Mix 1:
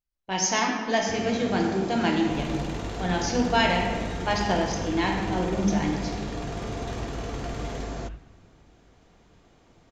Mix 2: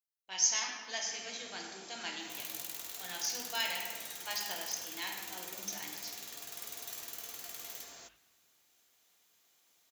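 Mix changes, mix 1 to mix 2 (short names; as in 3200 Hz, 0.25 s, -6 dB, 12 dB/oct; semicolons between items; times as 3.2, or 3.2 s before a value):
second sound: remove air absorption 100 m; master: add differentiator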